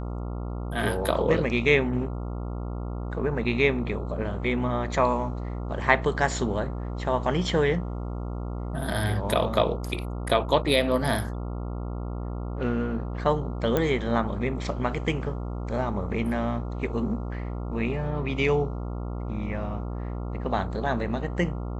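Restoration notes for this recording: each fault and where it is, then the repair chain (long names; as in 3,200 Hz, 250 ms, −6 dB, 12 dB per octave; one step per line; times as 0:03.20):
mains buzz 60 Hz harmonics 23 −32 dBFS
0:13.77: click −11 dBFS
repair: click removal
hum removal 60 Hz, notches 23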